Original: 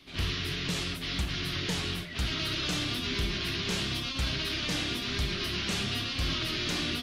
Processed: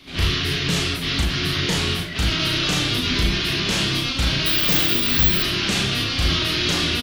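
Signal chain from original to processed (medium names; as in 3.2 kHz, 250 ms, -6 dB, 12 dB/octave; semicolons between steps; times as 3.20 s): doubling 36 ms -2.5 dB; 4.46–5.43 s: careless resampling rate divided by 2×, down none, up zero stuff; trim +8.5 dB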